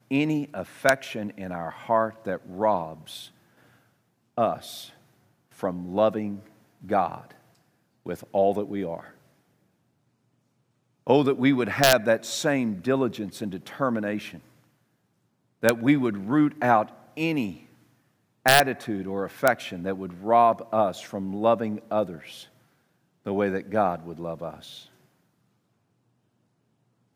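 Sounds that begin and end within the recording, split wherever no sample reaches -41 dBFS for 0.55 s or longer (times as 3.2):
4.37–4.9
5.59–7.32
8.06–9.1
11.07–14.39
15.63–17.62
18.46–22.44
23.26–24.83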